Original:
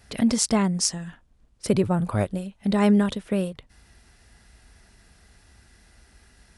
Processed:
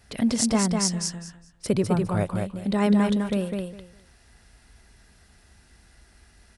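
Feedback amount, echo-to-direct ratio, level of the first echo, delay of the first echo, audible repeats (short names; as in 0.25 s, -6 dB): 19%, -4.0 dB, -4.0 dB, 0.204 s, 3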